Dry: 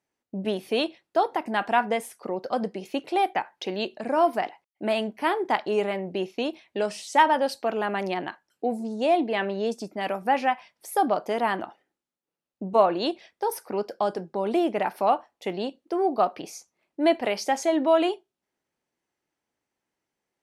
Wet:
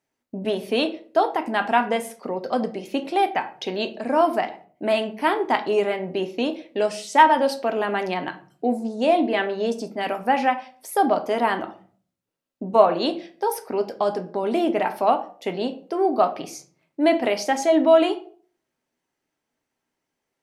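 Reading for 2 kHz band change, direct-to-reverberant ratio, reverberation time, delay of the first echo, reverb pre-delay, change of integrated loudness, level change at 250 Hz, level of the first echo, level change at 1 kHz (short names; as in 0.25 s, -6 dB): +3.5 dB, 7.0 dB, 0.45 s, none, 3 ms, +3.5 dB, +4.0 dB, none, +3.0 dB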